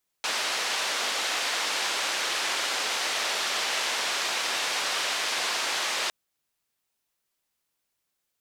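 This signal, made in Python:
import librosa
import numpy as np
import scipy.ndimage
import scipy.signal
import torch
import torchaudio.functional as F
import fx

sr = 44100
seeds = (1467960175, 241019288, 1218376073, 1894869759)

y = fx.band_noise(sr, seeds[0], length_s=5.86, low_hz=500.0, high_hz=4700.0, level_db=-28.5)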